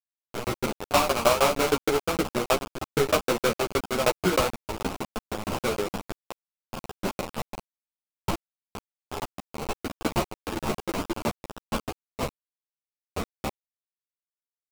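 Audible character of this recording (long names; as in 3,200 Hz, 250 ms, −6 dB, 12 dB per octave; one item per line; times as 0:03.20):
aliases and images of a low sample rate 1,800 Hz, jitter 20%
tremolo saw down 6.4 Hz, depth 100%
a quantiser's noise floor 6 bits, dither none
a shimmering, thickened sound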